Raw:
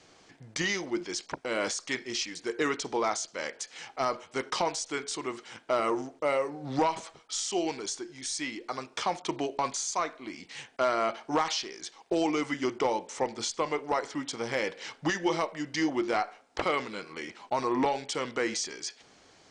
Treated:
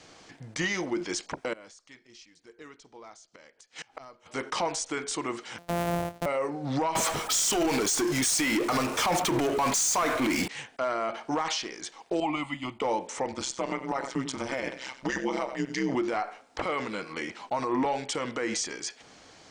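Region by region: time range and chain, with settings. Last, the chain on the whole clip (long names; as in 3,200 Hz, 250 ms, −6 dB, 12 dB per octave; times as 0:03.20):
0:01.53–0:04.26: low-shelf EQ 120 Hz +8.5 dB + gate with flip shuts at −32 dBFS, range −25 dB
0:05.58–0:06.26: samples sorted by size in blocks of 256 samples + parametric band 660 Hz +10.5 dB 0.56 octaves
0:06.95–0:10.48: high-shelf EQ 6,500 Hz +9.5 dB + power curve on the samples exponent 0.5
0:12.20–0:12.82: phaser with its sweep stopped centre 1,600 Hz, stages 6 + multiband upward and downward expander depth 100%
0:13.32–0:15.95: comb filter 3.3 ms, depth 84% + single-tap delay 94 ms −16 dB + amplitude modulation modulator 130 Hz, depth 85%
whole clip: notch filter 390 Hz, Q 12; dynamic equaliser 4,500 Hz, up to −6 dB, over −49 dBFS, Q 1.1; brickwall limiter −25 dBFS; level +5.5 dB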